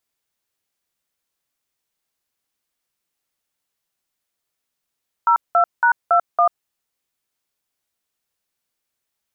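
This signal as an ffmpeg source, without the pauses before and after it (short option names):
-f lavfi -i "aevalsrc='0.2*clip(min(mod(t,0.279),0.091-mod(t,0.279))/0.002,0,1)*(eq(floor(t/0.279),0)*(sin(2*PI*941*mod(t,0.279))+sin(2*PI*1336*mod(t,0.279)))+eq(floor(t/0.279),1)*(sin(2*PI*697*mod(t,0.279))+sin(2*PI*1336*mod(t,0.279)))+eq(floor(t/0.279),2)*(sin(2*PI*941*mod(t,0.279))+sin(2*PI*1477*mod(t,0.279)))+eq(floor(t/0.279),3)*(sin(2*PI*697*mod(t,0.279))+sin(2*PI*1336*mod(t,0.279)))+eq(floor(t/0.279),4)*(sin(2*PI*697*mod(t,0.279))+sin(2*PI*1209*mod(t,0.279))))':d=1.395:s=44100"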